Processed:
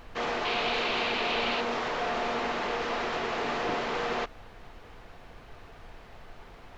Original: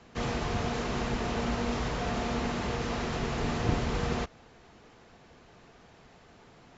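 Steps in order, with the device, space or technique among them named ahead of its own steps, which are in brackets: aircraft cabin announcement (band-pass 440–3900 Hz; saturation -27 dBFS, distortion -22 dB; brown noise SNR 15 dB); 0.45–1.61 s: high-order bell 3.2 kHz +8.5 dB 1.2 oct; trim +6 dB

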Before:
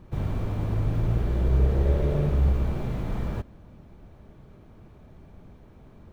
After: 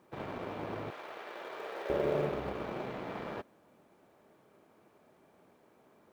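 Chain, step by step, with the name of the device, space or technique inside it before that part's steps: phone line with mismatched companding (band-pass 380–3400 Hz; companding laws mixed up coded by A); 0.90–1.90 s: Bessel high-pass 920 Hz, order 2; trim +3.5 dB

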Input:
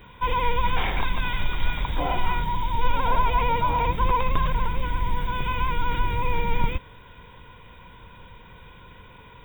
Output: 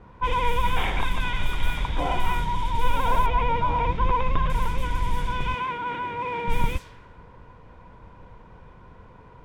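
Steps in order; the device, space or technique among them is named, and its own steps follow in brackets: 5.54–6.48 s: high-pass 230 Hz 12 dB/octave; cassette deck with a dynamic noise filter (white noise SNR 24 dB; level-controlled noise filter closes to 910 Hz, open at -16.5 dBFS); 3.26–4.50 s: distance through air 180 m

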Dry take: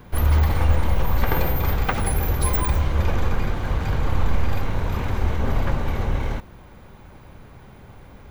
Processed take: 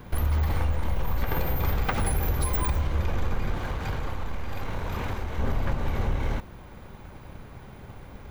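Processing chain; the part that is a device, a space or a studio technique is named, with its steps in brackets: drum-bus smash (transient shaper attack +4 dB, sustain 0 dB; compression, threshold -19 dBFS, peak gain reduction 10 dB; saturation -15 dBFS, distortion -21 dB); 3.58–5.38 s: bass shelf 260 Hz -5.5 dB

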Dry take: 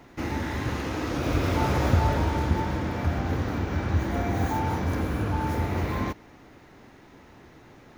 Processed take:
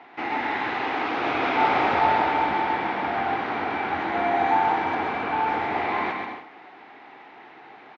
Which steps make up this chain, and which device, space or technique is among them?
phone earpiece (cabinet simulation 450–3600 Hz, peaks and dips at 550 Hz -8 dB, 780 Hz +9 dB, 2.2 kHz +4 dB); bouncing-ball echo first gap 130 ms, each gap 0.65×, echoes 5; trim +4.5 dB

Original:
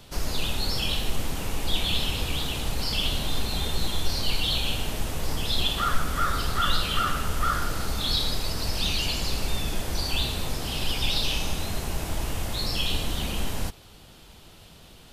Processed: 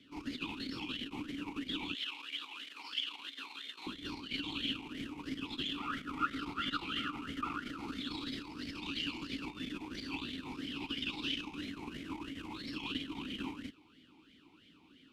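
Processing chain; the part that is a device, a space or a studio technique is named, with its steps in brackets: talk box (valve stage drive 17 dB, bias 0.8; talking filter i-u 3 Hz); 1.95–3.87 s: high-pass 880 Hz 12 dB/octave; trim +8 dB

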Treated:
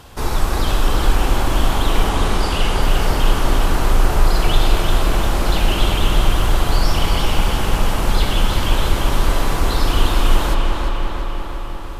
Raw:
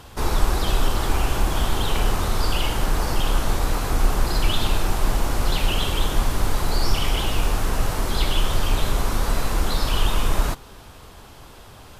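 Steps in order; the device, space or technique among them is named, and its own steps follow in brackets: dub delay into a spring reverb (filtered feedback delay 348 ms, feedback 68%, low-pass 4.9 kHz, level -4 dB; spring tank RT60 3.5 s, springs 39/46 ms, chirp 70 ms, DRR 3.5 dB); 2.09–2.82 s: low-pass 12 kHz 24 dB/octave; trim +1.5 dB

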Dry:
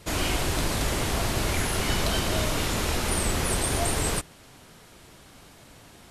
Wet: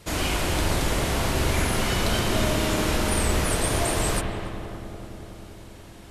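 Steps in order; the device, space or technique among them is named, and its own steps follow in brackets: dub delay into a spring reverb (filtered feedback delay 285 ms, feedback 74%, low-pass 1.4 kHz, level -8.5 dB; spring tank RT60 1.9 s, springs 42/55 ms, chirp 80 ms, DRR 2.5 dB)

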